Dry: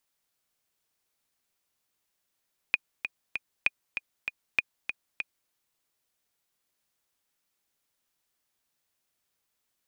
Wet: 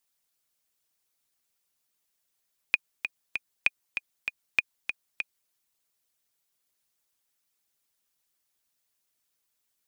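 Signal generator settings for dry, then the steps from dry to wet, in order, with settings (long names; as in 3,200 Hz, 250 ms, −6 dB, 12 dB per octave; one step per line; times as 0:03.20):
click track 195 BPM, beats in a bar 3, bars 3, 2,460 Hz, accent 8.5 dB −9 dBFS
harmonic and percussive parts rebalanced harmonic −10 dB
high-shelf EQ 3,800 Hz +6.5 dB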